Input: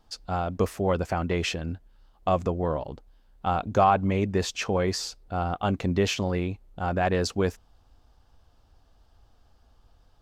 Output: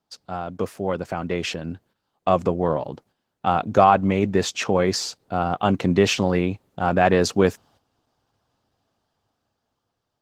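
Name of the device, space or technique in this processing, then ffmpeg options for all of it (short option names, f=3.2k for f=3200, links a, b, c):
video call: -af "highpass=f=110:w=0.5412,highpass=f=110:w=1.3066,dynaudnorm=f=500:g=7:m=13.5dB,agate=range=-10dB:threshold=-52dB:ratio=16:detection=peak,volume=-1dB" -ar 48000 -c:a libopus -b:a 16k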